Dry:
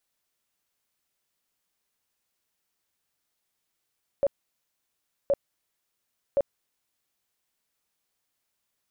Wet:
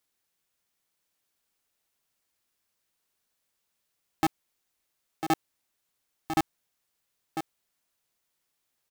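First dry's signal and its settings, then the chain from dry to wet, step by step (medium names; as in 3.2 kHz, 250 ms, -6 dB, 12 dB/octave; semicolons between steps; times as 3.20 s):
tone bursts 561 Hz, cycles 21, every 1.07 s, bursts 3, -18.5 dBFS
on a send: delay 999 ms -8 dB; on the sum: polarity switched at an audio rate 240 Hz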